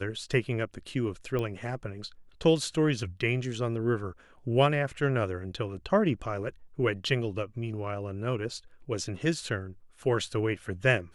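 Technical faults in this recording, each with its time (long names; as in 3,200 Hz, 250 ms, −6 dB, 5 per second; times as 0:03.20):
0:01.39: click −20 dBFS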